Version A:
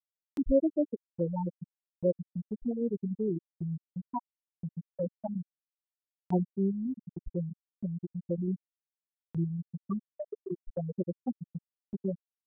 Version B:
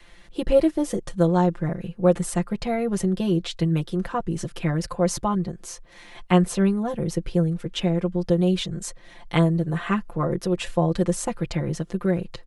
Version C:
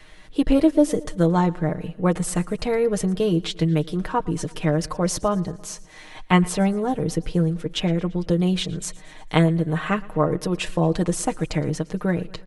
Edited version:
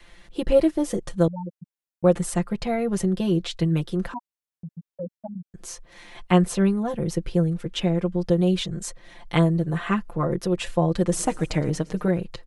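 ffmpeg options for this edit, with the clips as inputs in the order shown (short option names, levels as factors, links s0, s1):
-filter_complex "[0:a]asplit=2[s0][s1];[1:a]asplit=4[s2][s3][s4][s5];[s2]atrim=end=1.282[s6];[s0]atrim=start=1.278:end=2.042[s7];[s3]atrim=start=2.038:end=4.142[s8];[s1]atrim=start=4.138:end=5.542[s9];[s4]atrim=start=5.538:end=11.122[s10];[2:a]atrim=start=11.118:end=12.082[s11];[s5]atrim=start=12.078[s12];[s6][s7]acrossfade=d=0.004:c1=hsin:c2=hsin[s13];[s13][s8]acrossfade=d=0.004:c1=hsin:c2=hsin[s14];[s14][s9]acrossfade=d=0.004:c1=hsin:c2=hsin[s15];[s15][s10]acrossfade=d=0.004:c1=hsin:c2=hsin[s16];[s16][s11]acrossfade=d=0.004:c1=hsin:c2=hsin[s17];[s17][s12]acrossfade=d=0.004:c1=hsin:c2=hsin"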